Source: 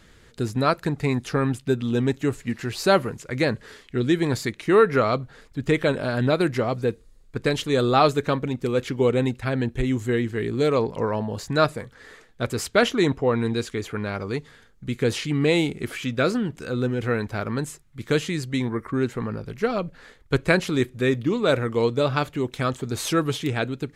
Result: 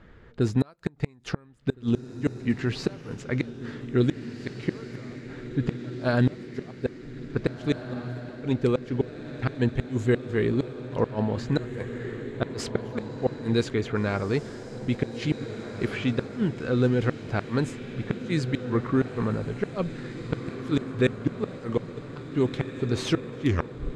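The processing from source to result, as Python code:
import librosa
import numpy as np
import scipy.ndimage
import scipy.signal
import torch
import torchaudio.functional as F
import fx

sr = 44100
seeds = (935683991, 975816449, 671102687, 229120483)

y = fx.tape_stop_end(x, sr, length_s=0.52)
y = fx.env_lowpass(y, sr, base_hz=1900.0, full_db=-16.0)
y = fx.gate_flip(y, sr, shuts_db=-14.0, range_db=-33)
y = fx.peak_eq(y, sr, hz=2600.0, db=-2.5, octaves=1.9)
y = fx.echo_diffused(y, sr, ms=1848, feedback_pct=57, wet_db=-10)
y = y * 10.0 ** (2.5 / 20.0)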